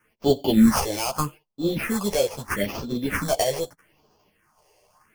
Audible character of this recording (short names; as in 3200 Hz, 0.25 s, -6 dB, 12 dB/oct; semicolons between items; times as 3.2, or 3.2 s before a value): aliases and images of a low sample rate 3800 Hz, jitter 0%; phasing stages 4, 0.79 Hz, lowest notch 220–2000 Hz; random-step tremolo; a shimmering, thickened sound